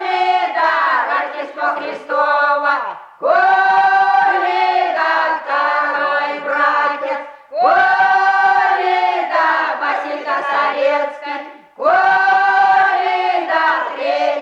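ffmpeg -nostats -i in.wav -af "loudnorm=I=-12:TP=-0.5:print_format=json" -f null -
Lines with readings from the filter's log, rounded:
"input_i" : "-14.6",
"input_tp" : "-1.9",
"input_lra" : "2.3",
"input_thresh" : "-24.8",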